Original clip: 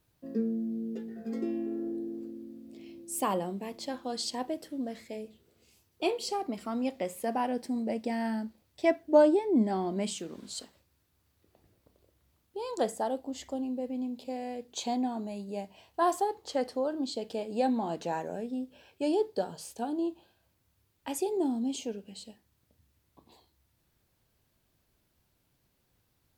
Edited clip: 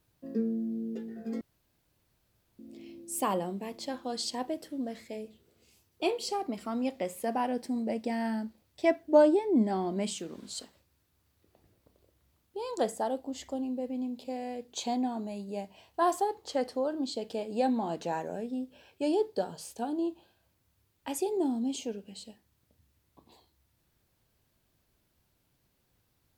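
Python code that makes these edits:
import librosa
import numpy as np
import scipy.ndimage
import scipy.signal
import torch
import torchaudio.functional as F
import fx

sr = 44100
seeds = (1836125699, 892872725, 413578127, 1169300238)

y = fx.edit(x, sr, fx.room_tone_fill(start_s=1.41, length_s=1.18), tone=tone)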